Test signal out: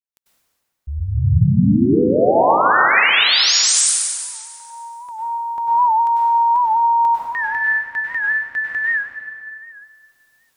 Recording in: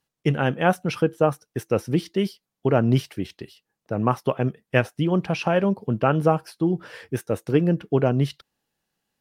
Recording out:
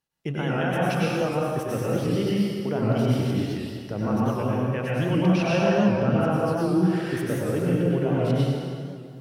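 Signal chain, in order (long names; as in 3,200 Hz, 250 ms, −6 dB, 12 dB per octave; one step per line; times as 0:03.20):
camcorder AGC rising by 14 dB per second
brickwall limiter −11 dBFS
dense smooth reverb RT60 2.3 s, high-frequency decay 0.75×, pre-delay 85 ms, DRR −7 dB
wow of a warped record 78 rpm, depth 100 cents
level −7.5 dB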